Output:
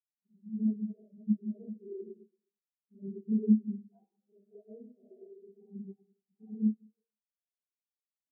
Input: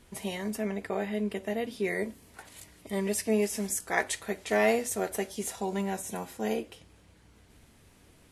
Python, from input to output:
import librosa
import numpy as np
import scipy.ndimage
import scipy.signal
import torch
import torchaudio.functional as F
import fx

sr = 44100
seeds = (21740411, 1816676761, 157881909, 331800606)

p1 = fx.rattle_buzz(x, sr, strikes_db=-32.0, level_db=-29.0)
p2 = fx.recorder_agc(p1, sr, target_db=-19.5, rise_db_per_s=9.3, max_gain_db=30)
p3 = scipy.signal.lfilter(np.full(7, 1.0 / 7), 1.0, p2)
p4 = fx.low_shelf(p3, sr, hz=73.0, db=-4.5)
p5 = p4 + fx.echo_single(p4, sr, ms=440, db=-13.5, dry=0)
p6 = fx.level_steps(p5, sr, step_db=15)
p7 = fx.env_lowpass_down(p6, sr, base_hz=390.0, full_db=-27.0)
p8 = fx.high_shelf(p7, sr, hz=2000.0, db=-7.5)
p9 = fx.rev_schroeder(p8, sr, rt60_s=1.9, comb_ms=25, drr_db=-9.0)
y = fx.spectral_expand(p9, sr, expansion=4.0)